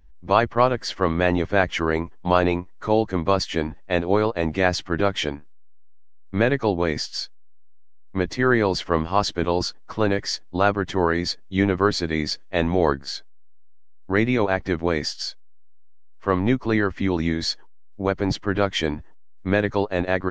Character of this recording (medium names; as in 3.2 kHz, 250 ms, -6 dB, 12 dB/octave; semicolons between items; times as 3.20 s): noise floor -40 dBFS; spectral tilt -4.0 dB/octave